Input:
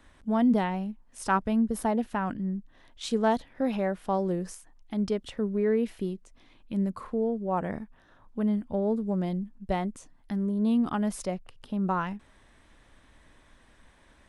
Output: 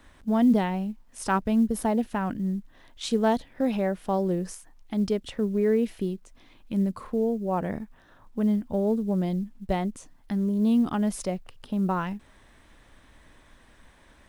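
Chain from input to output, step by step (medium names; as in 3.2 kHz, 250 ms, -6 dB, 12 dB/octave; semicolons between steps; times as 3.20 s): companded quantiser 8-bit; dynamic bell 1.2 kHz, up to -4 dB, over -43 dBFS, Q 0.87; trim +3 dB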